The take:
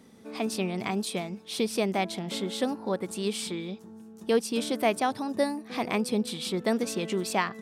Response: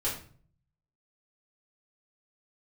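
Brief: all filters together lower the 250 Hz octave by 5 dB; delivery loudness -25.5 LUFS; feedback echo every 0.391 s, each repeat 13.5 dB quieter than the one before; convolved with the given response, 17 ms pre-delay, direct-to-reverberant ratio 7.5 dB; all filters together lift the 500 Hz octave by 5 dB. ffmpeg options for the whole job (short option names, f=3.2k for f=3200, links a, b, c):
-filter_complex "[0:a]equalizer=f=250:t=o:g=-9,equalizer=f=500:t=o:g=8.5,aecho=1:1:391|782:0.211|0.0444,asplit=2[a][b];[1:a]atrim=start_sample=2205,adelay=17[c];[b][c]afir=irnorm=-1:irlink=0,volume=-13.5dB[d];[a][d]amix=inputs=2:normalize=0,volume=1dB"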